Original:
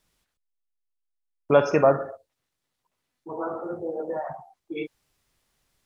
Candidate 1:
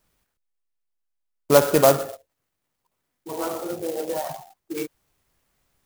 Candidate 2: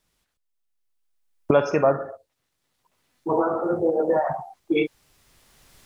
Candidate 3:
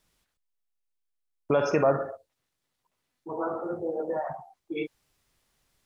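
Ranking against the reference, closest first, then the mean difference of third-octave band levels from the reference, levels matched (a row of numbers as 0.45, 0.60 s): 3, 2, 1; 2.0, 3.5, 10.0 dB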